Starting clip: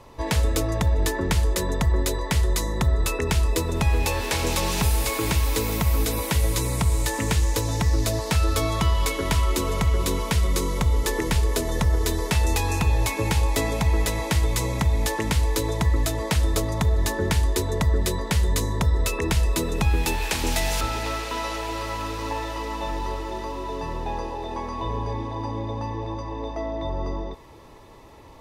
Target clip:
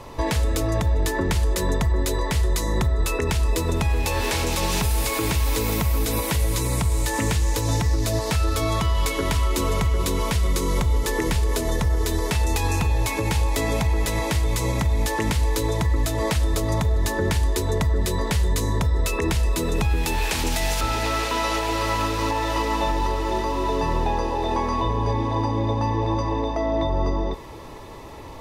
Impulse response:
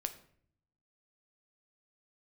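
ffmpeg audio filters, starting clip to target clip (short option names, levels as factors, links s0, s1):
-filter_complex "[0:a]alimiter=limit=0.0841:level=0:latency=1:release=269,asplit=2[s0][s1];[1:a]atrim=start_sample=2205[s2];[s1][s2]afir=irnorm=-1:irlink=0,volume=0.398[s3];[s0][s3]amix=inputs=2:normalize=0,volume=1.88"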